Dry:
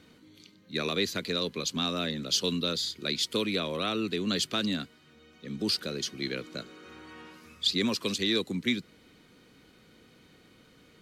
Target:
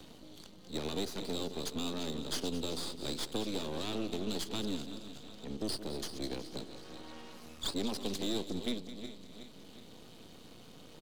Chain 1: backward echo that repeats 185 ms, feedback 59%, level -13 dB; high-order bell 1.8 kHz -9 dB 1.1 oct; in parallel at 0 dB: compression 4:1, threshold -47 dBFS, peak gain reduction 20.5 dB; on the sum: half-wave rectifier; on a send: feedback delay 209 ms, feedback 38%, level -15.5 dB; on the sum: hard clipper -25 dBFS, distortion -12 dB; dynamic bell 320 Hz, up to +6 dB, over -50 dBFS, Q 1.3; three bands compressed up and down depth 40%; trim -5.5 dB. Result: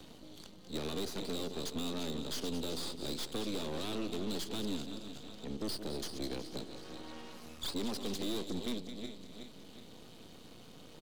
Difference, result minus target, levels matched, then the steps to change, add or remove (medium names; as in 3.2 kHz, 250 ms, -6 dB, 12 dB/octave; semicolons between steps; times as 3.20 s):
hard clipper: distortion +15 dB; compression: peak gain reduction -5.5 dB
change: compression 4:1, threshold -54.5 dBFS, peak gain reduction 26 dB; change: hard clipper -19 dBFS, distortion -27 dB